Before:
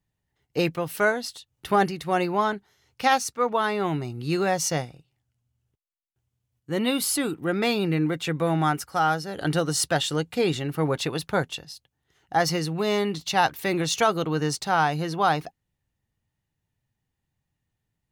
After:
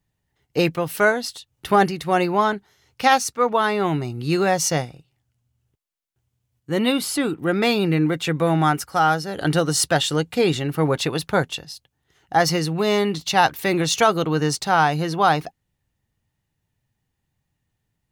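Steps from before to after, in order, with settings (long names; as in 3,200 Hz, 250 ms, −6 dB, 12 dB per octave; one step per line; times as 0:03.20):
0:06.92–0:07.39: high-shelf EQ 6,100 Hz −9.5 dB
level +4.5 dB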